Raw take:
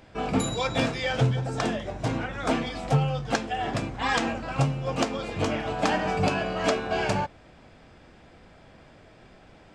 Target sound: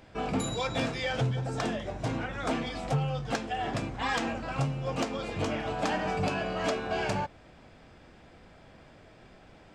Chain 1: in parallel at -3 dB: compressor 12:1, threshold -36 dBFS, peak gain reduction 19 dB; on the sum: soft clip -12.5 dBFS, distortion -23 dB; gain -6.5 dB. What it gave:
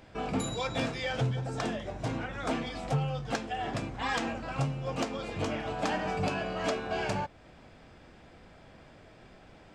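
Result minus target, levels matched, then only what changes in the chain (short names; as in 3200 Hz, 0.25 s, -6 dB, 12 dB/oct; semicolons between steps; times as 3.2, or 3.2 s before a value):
compressor: peak gain reduction +8.5 dB
change: compressor 12:1, threshold -26.5 dBFS, peak gain reduction 10.5 dB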